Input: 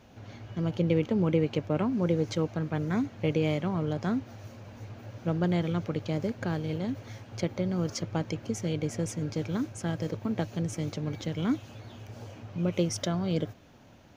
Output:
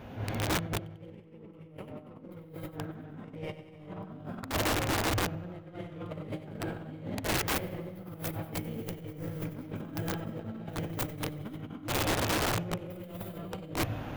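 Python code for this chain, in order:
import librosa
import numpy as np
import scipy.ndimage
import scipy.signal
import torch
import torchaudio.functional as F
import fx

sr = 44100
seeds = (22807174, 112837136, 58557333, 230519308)

y = fx.tracing_dist(x, sr, depth_ms=0.4)
y = fx.notch(y, sr, hz=4200.0, q=25.0)
y = fx.rev_gated(y, sr, seeds[0], gate_ms=350, shape='rising', drr_db=-6.5)
y = fx.over_compress(y, sr, threshold_db=-33.0, ratio=-0.5)
y = fx.peak_eq(y, sr, hz=6100.0, db=-14.0, octaves=1.2)
y = fx.echo_feedback(y, sr, ms=94, feedback_pct=56, wet_db=-13)
y = (np.mod(10.0 ** (24.0 / 20.0) * y + 1.0, 2.0) - 1.0) / 10.0 ** (24.0 / 20.0)
y = fx.attack_slew(y, sr, db_per_s=180.0)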